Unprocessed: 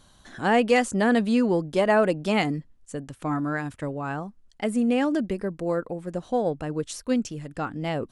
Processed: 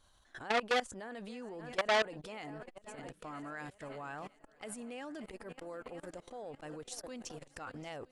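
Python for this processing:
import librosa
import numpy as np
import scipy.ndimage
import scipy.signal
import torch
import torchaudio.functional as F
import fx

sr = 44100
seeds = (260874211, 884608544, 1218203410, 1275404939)

y = fx.peak_eq(x, sr, hz=190.0, db=-11.5, octaves=1.7)
y = fx.echo_swing(y, sr, ms=965, ratio=1.5, feedback_pct=57, wet_db=-19.0)
y = fx.level_steps(y, sr, step_db=22)
y = fx.high_shelf(y, sr, hz=2400.0, db=fx.steps((0.0, -3.0), (3.23, 3.5)))
y = fx.transformer_sat(y, sr, knee_hz=2800.0)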